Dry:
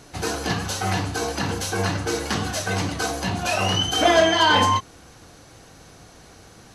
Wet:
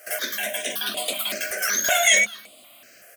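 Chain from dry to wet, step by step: HPF 62 Hz 24 dB/oct; resonant low shelf 240 Hz -7.5 dB, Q 3; notches 50/100/150/200/250/300/350 Hz; wide varispeed 2.13×; fixed phaser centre 380 Hz, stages 4; echo 0.216 s -19.5 dB; step phaser 5.3 Hz 990–5800 Hz; gain +4.5 dB

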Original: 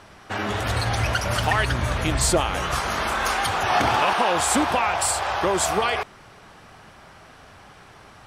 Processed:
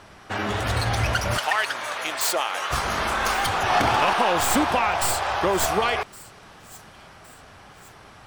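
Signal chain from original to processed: tracing distortion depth 0.065 ms; 1.38–2.71 HPF 670 Hz 12 dB/oct; thin delay 1.114 s, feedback 42%, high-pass 4700 Hz, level -18.5 dB

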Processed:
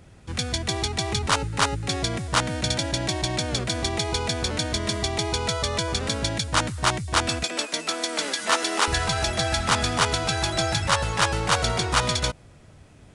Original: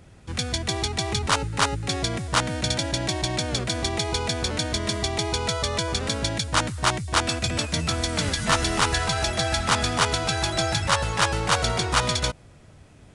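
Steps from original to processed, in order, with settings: 7.43–8.88 HPF 290 Hz 24 dB/oct

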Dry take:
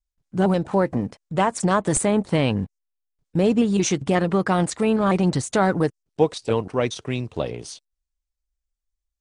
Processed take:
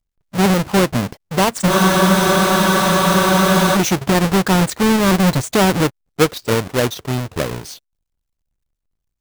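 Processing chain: half-waves squared off; spectral freeze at 1.72, 2.03 s; gain +1 dB

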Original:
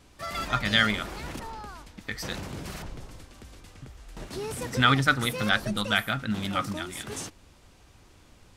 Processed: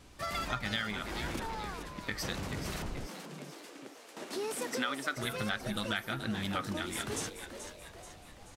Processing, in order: 3.07–5.17 HPF 240 Hz 24 dB/oct; compressor 6:1, threshold -32 dBFS, peak gain reduction 15.5 dB; frequency-shifting echo 0.432 s, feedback 50%, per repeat +130 Hz, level -9.5 dB

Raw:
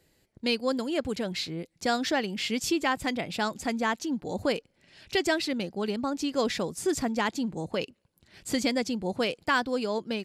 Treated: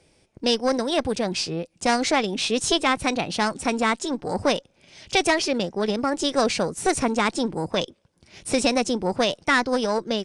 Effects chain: one diode to ground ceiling -21.5 dBFS; formant shift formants +3 st; downsampling 22050 Hz; gain +7 dB

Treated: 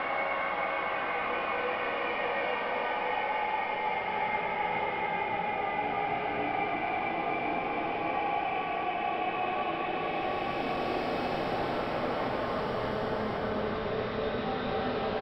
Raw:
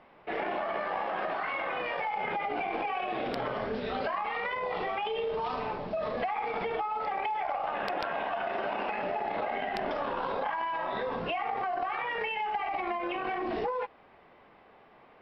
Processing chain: octaver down 1 oct, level -6 dB; echo 0.238 s -4 dB; Paulstretch 6.2×, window 0.50 s, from 1.53

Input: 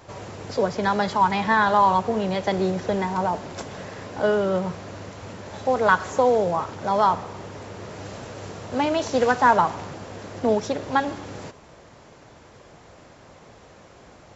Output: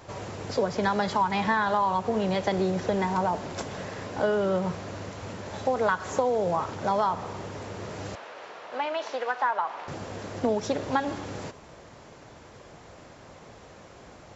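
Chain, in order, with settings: compressor 6:1, threshold -21 dBFS, peak gain reduction 10 dB; 8.15–9.88 BPF 690–3200 Hz

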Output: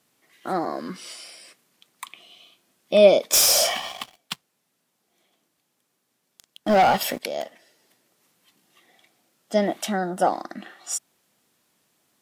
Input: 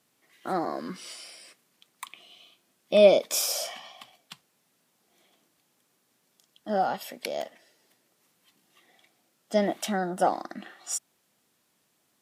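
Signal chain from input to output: 3.33–7.2 sample leveller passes 3; gain +3 dB

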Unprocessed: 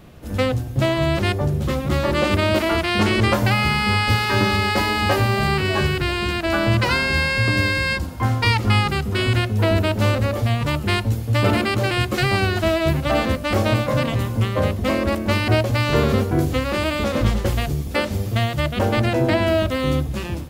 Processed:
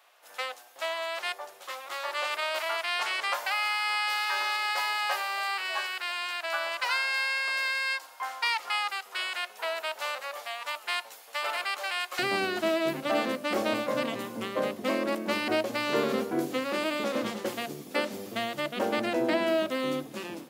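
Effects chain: HPF 730 Hz 24 dB/oct, from 12.19 s 230 Hz; gain -7 dB

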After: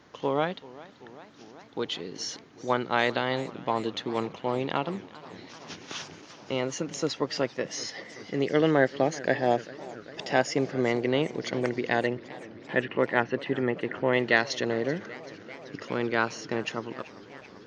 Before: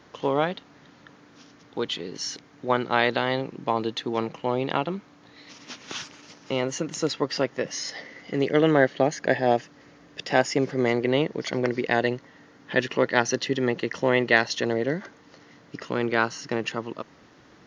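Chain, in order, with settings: 12.06–14.13 LPF 2800 Hz 24 dB/oct; warbling echo 0.389 s, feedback 80%, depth 143 cents, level -19.5 dB; gain -3 dB

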